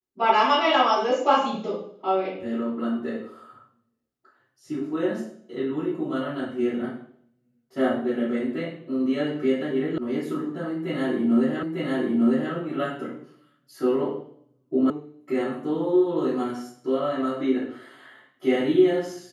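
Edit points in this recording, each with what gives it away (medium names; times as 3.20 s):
9.98 s: sound stops dead
11.63 s: repeat of the last 0.9 s
14.90 s: sound stops dead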